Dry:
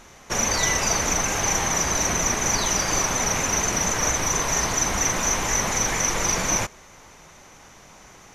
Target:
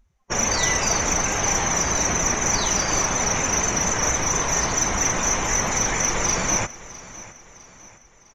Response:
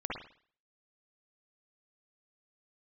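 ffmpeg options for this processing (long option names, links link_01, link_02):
-af "afftdn=noise_reduction=32:noise_floor=-36,acontrast=81,aecho=1:1:656|1312|1968|2624:0.126|0.0567|0.0255|0.0115,volume=-5.5dB"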